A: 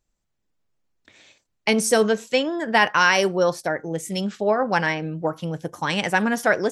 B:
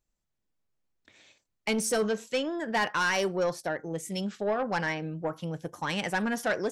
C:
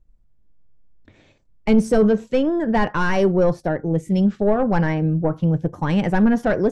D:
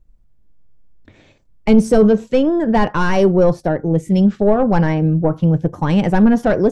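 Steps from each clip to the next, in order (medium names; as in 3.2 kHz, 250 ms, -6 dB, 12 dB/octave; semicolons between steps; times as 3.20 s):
saturation -14.5 dBFS, distortion -13 dB; trim -6 dB
tilt EQ -4.5 dB/octave; trim +5.5 dB
dynamic bell 1.8 kHz, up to -4 dB, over -37 dBFS, Q 1.6; trim +4.5 dB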